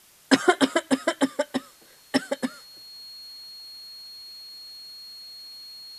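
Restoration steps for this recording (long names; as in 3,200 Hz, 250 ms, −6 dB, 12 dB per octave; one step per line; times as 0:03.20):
click removal
notch filter 4,300 Hz, Q 30
broadband denoise 19 dB, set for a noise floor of −54 dBFS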